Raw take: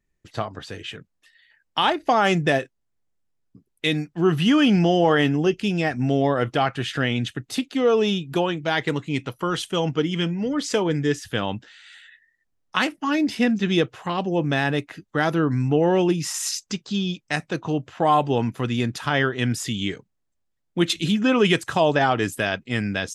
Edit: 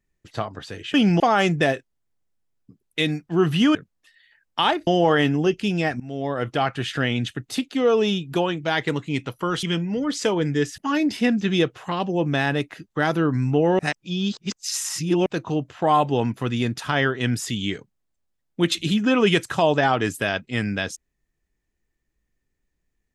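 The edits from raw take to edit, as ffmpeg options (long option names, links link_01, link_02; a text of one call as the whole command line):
ffmpeg -i in.wav -filter_complex "[0:a]asplit=10[link_01][link_02][link_03][link_04][link_05][link_06][link_07][link_08][link_09][link_10];[link_01]atrim=end=0.942[link_11];[link_02]atrim=start=4.608:end=4.872[link_12];[link_03]atrim=start=2.058:end=4.612[link_13];[link_04]atrim=start=0.938:end=2.062[link_14];[link_05]atrim=start=4.868:end=6,asetpts=PTS-STARTPTS,afade=type=out:start_time=1.128:duration=0.004:curve=hsin:silence=0.0891251[link_15];[link_06]atrim=start=6:end=9.632,asetpts=PTS-STARTPTS,afade=type=in:duration=0.9:curve=qsin:silence=0.0891251[link_16];[link_07]atrim=start=10.118:end=11.272[link_17];[link_08]atrim=start=12.958:end=15.972[link_18];[link_09]atrim=start=15.968:end=17.442,asetpts=PTS-STARTPTS,areverse[link_19];[link_10]atrim=start=17.438[link_20];[link_11][link_12]acrossfade=duration=0.004:curve1=hsin:curve2=hsin[link_21];[link_21][link_13]acrossfade=duration=0.004:curve1=hsin:curve2=hsin[link_22];[link_22][link_14]acrossfade=duration=0.004:curve1=hsin:curve2=hsin[link_23];[link_15][link_16]concat=n=2:v=0:a=1[link_24];[link_23][link_24]acrossfade=duration=0.004:curve1=hsin:curve2=hsin[link_25];[link_25][link_17]acrossfade=duration=0.004:curve1=hsin:curve2=hsin[link_26];[link_26][link_18]acrossfade=duration=0.004:curve1=hsin:curve2=hsin[link_27];[link_27][link_19]acrossfade=duration=0.004:curve1=hsin:curve2=hsin[link_28];[link_28][link_20]acrossfade=duration=0.004:curve1=hsin:curve2=hsin" out.wav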